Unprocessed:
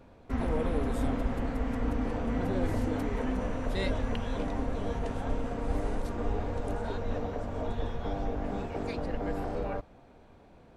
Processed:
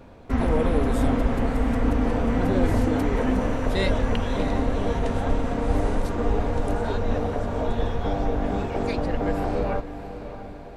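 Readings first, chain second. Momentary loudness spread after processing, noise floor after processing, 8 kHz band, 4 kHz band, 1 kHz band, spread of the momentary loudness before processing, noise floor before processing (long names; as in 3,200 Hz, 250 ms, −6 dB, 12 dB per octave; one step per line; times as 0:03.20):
5 LU, −38 dBFS, +8.5 dB, +8.5 dB, +8.5 dB, 5 LU, −56 dBFS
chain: feedback delay with all-pass diffusion 646 ms, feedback 50%, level −12 dB
level +8 dB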